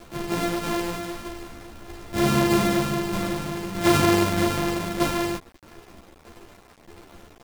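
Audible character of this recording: a buzz of ramps at a fixed pitch in blocks of 128 samples; tremolo saw down 1.6 Hz, depth 40%; a quantiser's noise floor 8-bit, dither none; a shimmering, thickened sound

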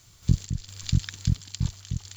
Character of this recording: a quantiser's noise floor 10-bit, dither none; random-step tremolo 4.4 Hz, depth 65%

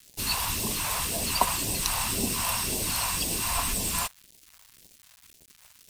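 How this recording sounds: a quantiser's noise floor 8-bit, dither none; phasing stages 2, 1.9 Hz, lowest notch 310–1200 Hz

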